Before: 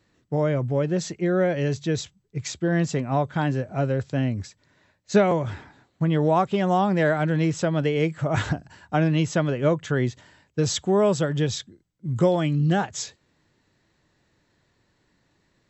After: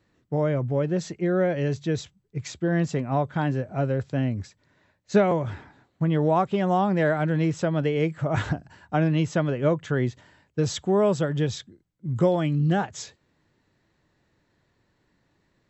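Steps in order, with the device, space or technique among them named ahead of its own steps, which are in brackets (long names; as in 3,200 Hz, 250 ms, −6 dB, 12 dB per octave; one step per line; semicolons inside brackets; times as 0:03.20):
behind a face mask (high-shelf EQ 3,500 Hz −6.5 dB)
level −1 dB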